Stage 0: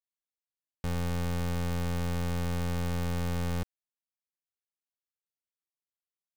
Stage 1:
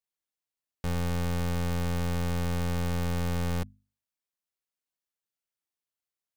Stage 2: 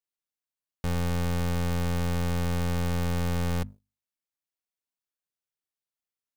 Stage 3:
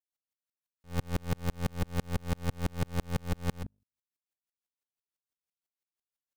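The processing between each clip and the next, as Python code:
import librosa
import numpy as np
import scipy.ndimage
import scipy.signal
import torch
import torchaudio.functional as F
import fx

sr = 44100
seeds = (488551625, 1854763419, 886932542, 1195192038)

y1 = fx.hum_notches(x, sr, base_hz=50, count=5)
y1 = y1 * 10.0 ** (2.0 / 20.0)
y2 = fx.leveller(y1, sr, passes=2)
y3 = fx.tremolo_decay(y2, sr, direction='swelling', hz=6.0, depth_db=39)
y3 = y3 * 10.0 ** (3.5 / 20.0)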